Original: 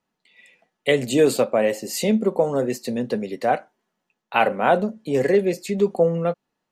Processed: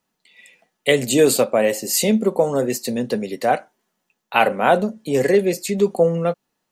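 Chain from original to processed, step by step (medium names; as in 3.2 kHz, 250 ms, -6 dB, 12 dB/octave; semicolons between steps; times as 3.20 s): treble shelf 5.4 kHz +10.5 dB; trim +2 dB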